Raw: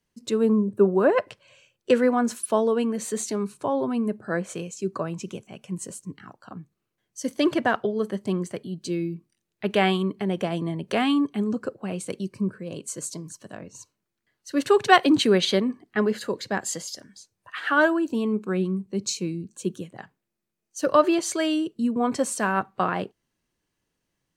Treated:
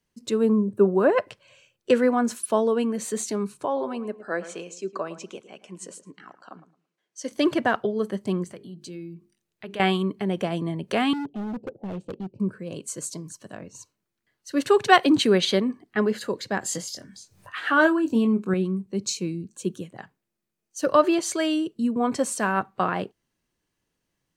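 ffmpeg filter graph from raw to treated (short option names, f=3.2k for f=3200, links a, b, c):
-filter_complex "[0:a]asettb=1/sr,asplit=3[a][b][c];[a]atrim=end=3.654[d];[b]atrim=start=3.65:end=7.32,asetpts=PTS-STARTPTS,afade=t=in:d=0.004:c=qsin,afade=t=out:st=3.666:d=0.004:c=qsin,highpass=350,lowpass=7.4k,asplit=2[e][f];[f]adelay=110,lowpass=f=1.8k:p=1,volume=-13.5dB,asplit=2[g][h];[h]adelay=110,lowpass=f=1.8k:p=1,volume=0.23,asplit=2[i][j];[j]adelay=110,lowpass=f=1.8k:p=1,volume=0.23[k];[e][g][i][k]amix=inputs=4:normalize=0,atrim=end_sample=161847[l];[c]atrim=start=7.316[m];[d][l]acrossfade=d=0.004:c1=hsin:c2=qsin[n];[n][m]acrossfade=d=0.004:c1=qsin:c2=hsin,asettb=1/sr,asplit=3[o][p][q];[o]atrim=end=8.444[r];[p]atrim=start=8.44:end=9.8,asetpts=PTS-STARTPTS,afade=t=in:d=0.004:c=qsin,afade=t=out:st=1.356:d=0.004:c=qsin,bandreject=f=50:t=h:w=6,bandreject=f=100:t=h:w=6,bandreject=f=150:t=h:w=6,bandreject=f=200:t=h:w=6,bandreject=f=250:t=h:w=6,bandreject=f=300:t=h:w=6,bandreject=f=350:t=h:w=6,bandreject=f=400:t=h:w=6,bandreject=f=450:t=h:w=6,acompressor=threshold=-42dB:ratio=2:attack=3.2:release=140:knee=1:detection=peak[s];[q]atrim=start=9.796[t];[r][s]acrossfade=d=0.004:c1=hsin:c2=qsin[u];[u][t]acrossfade=d=0.004:c1=qsin:c2=hsin,asettb=1/sr,asplit=3[v][w][x];[v]atrim=end=11.134[y];[w]atrim=start=11.13:end=12.4,asetpts=PTS-STARTPTS,afade=t=in:d=0.004:c=qsin,afade=t=out:st=1.266:d=0.004:c=qsin,asuperstop=centerf=1500:order=20:qfactor=0.95,adynamicsmooth=sensitivity=2.5:basefreq=1.2k,asoftclip=type=hard:threshold=-28.5dB[z];[x]atrim=start=12.396[aa];[y][z]acrossfade=d=0.004:c1=hsin:c2=qsin[ab];[ab][aa]acrossfade=d=0.004:c1=qsin:c2=hsin,asettb=1/sr,asplit=3[ac][ad][ae];[ac]atrim=end=16.614[af];[ad]atrim=start=16.61:end=18.54,asetpts=PTS-STARTPTS,afade=t=in:d=0.004:c=qsin,afade=t=out:st=1.926:d=0.004:c=qsin,equalizer=f=110:w=0.59:g=5.5,acompressor=mode=upward:threshold=-40dB:ratio=2.5:attack=3.2:release=140:knee=2.83:detection=peak,asplit=2[ag][ah];[ah]adelay=22,volume=-7.5dB[ai];[ag][ai]amix=inputs=2:normalize=0,atrim=end_sample=85113[aj];[ae]atrim=start=18.536[ak];[af][aj]acrossfade=d=0.004:c1=hsin:c2=qsin[al];[al][ak]acrossfade=d=0.004:c1=qsin:c2=hsin"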